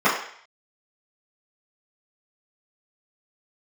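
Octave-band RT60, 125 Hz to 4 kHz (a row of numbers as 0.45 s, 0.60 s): 0.25 s, 0.40 s, 0.55 s, 0.60 s, 0.70 s, 0.65 s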